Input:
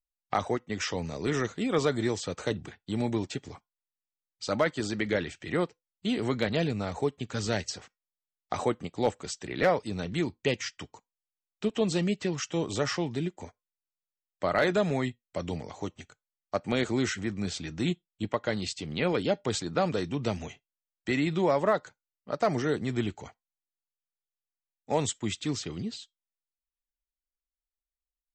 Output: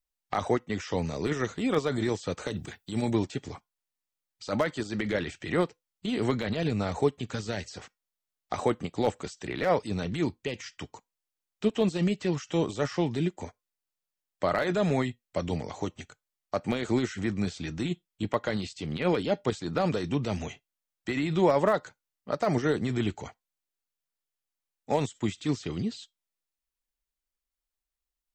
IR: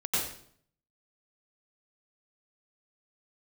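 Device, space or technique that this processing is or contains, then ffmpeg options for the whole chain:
de-esser from a sidechain: -filter_complex "[0:a]asettb=1/sr,asplit=3[a][b][c];[a]atrim=end=2.484[d];[b]atrim=start=2.48:end=3.11,asetpts=PTS-STARTPTS,afade=t=in:d=0.004:c=qsin,afade=t=out:st=0.626:d=0.004:c=qsin,aemphasis=mode=production:type=50kf[e];[c]atrim=start=3.106[f];[d][e]acrossfade=d=0.004:c1=hsin:c2=qsin[g];[g][f]acrossfade=d=0.004:c1=qsin:c2=hsin,asplit=2[h][i];[i]highpass=6.2k,apad=whole_len=1250198[j];[h][j]sidechaincompress=threshold=-50dB:ratio=4:attack=0.5:release=44,volume=4dB"

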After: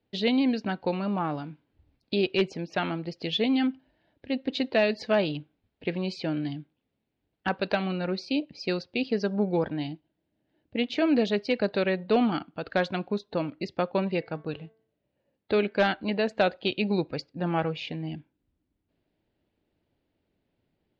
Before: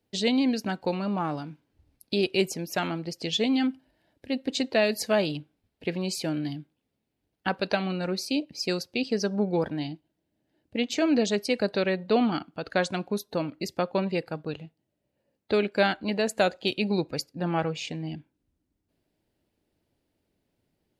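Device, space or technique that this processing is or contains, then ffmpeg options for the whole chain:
synthesiser wavefolder: -filter_complex "[0:a]asettb=1/sr,asplit=3[a][b][c];[a]atrim=end=14.164[d];[b]atrim=start=14.16:end=15.8,asetpts=PTS-STARTPTS,afade=t=in:d=0.004:c=qsin,afade=t=out:st=1.636:d=0.004:c=qsin,bandreject=f=222:t=h:w=4,bandreject=f=444:t=h:w=4,bandreject=f=666:t=h:w=4,bandreject=f=888:t=h:w=4,bandreject=f=1.11k:t=h:w=4,bandreject=f=1.332k:t=h:w=4,bandreject=f=1.554k:t=h:w=4,bandreject=f=1.776k:t=h:w=4,bandreject=f=1.998k:t=h:w=4,bandreject=f=2.22k:t=h:w=4[e];[c]atrim=start=15.796[f];[d][e]acrossfade=d=0.004:c1=hsin:c2=qsin[g];[g][f]acrossfade=d=0.004:c1=qsin:c2=hsin,aeval=exprs='0.2*(abs(mod(val(0)/0.2+3,4)-2)-1)':c=same,lowpass=f=4.1k:w=0.5412,lowpass=f=4.1k:w=1.3066"

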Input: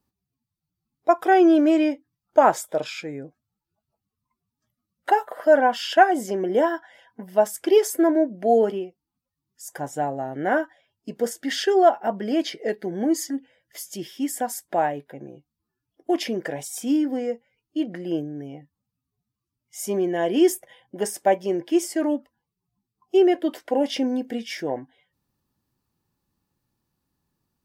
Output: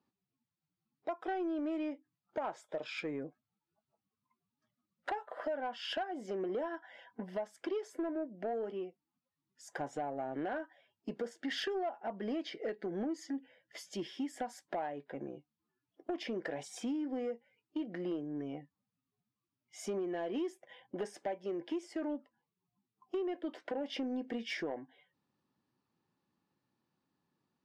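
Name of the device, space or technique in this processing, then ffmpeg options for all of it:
AM radio: -af "highpass=180,lowpass=3.8k,acompressor=threshold=-31dB:ratio=8,asoftclip=type=tanh:threshold=-26.5dB,volume=-2dB"

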